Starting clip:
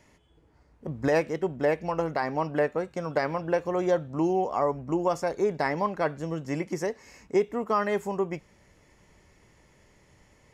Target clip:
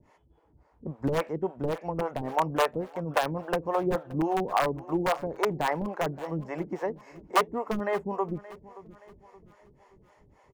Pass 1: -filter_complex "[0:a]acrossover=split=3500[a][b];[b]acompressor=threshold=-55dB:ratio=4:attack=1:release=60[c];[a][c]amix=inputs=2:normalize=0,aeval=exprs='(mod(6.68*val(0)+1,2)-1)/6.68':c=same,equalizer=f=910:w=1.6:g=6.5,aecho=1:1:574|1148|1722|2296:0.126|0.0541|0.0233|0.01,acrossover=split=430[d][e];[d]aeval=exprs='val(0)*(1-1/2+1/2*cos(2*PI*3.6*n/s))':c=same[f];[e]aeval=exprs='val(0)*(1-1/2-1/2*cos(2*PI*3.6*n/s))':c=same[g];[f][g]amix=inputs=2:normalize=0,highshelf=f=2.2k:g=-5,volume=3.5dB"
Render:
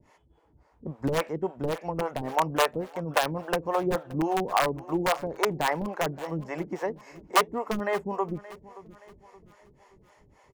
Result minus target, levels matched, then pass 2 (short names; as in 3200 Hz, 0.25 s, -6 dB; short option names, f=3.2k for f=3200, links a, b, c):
4000 Hz band +4.0 dB
-filter_complex "[0:a]acrossover=split=3500[a][b];[b]acompressor=threshold=-55dB:ratio=4:attack=1:release=60[c];[a][c]amix=inputs=2:normalize=0,aeval=exprs='(mod(6.68*val(0)+1,2)-1)/6.68':c=same,equalizer=f=910:w=1.6:g=6.5,aecho=1:1:574|1148|1722|2296:0.126|0.0541|0.0233|0.01,acrossover=split=430[d][e];[d]aeval=exprs='val(0)*(1-1/2+1/2*cos(2*PI*3.6*n/s))':c=same[f];[e]aeval=exprs='val(0)*(1-1/2-1/2*cos(2*PI*3.6*n/s))':c=same[g];[f][g]amix=inputs=2:normalize=0,highshelf=f=2.2k:g=-12,volume=3.5dB"